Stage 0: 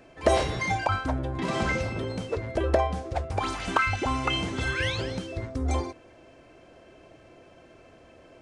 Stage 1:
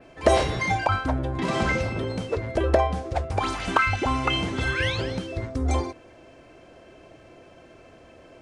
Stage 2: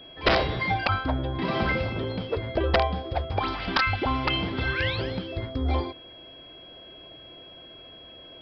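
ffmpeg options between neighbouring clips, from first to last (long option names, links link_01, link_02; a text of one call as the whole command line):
ffmpeg -i in.wav -af "adynamicequalizer=threshold=0.00282:dfrequency=7200:dqfactor=1:tfrequency=7200:tqfactor=1:attack=5:release=100:ratio=0.375:range=2:mode=cutabove:tftype=bell,volume=3dB" out.wav
ffmpeg -i in.wav -af "aeval=exprs='(mod(3.76*val(0)+1,2)-1)/3.76':channel_layout=same,aeval=exprs='val(0)+0.00631*sin(2*PI*3300*n/s)':channel_layout=same,aresample=11025,aresample=44100,volume=-1.5dB" out.wav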